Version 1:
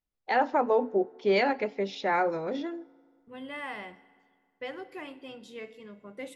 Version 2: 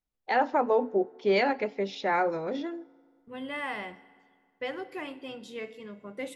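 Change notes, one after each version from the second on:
second voice +3.5 dB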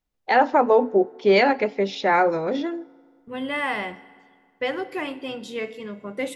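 first voice +7.5 dB
second voice +8.5 dB

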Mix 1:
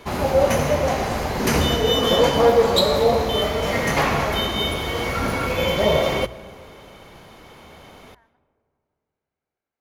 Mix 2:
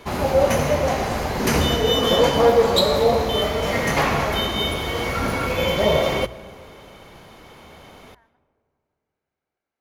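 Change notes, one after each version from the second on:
first voice +3.0 dB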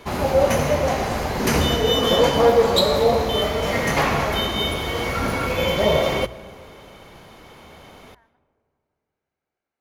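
nothing changed

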